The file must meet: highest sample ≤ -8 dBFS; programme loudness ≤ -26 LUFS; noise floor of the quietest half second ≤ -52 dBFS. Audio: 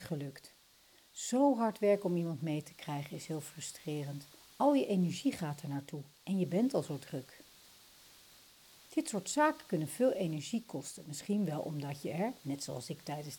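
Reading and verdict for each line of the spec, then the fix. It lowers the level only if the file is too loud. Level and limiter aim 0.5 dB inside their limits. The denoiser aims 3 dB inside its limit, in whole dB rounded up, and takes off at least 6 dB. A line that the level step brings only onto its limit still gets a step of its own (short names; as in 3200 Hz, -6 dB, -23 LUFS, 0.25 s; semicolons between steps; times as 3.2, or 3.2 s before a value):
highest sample -17.5 dBFS: OK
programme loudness -35.5 LUFS: OK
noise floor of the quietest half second -64 dBFS: OK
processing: none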